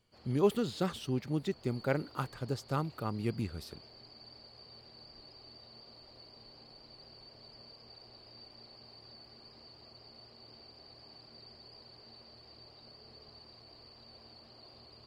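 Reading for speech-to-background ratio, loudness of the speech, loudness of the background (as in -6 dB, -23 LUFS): 19.0 dB, -34.5 LUFS, -53.5 LUFS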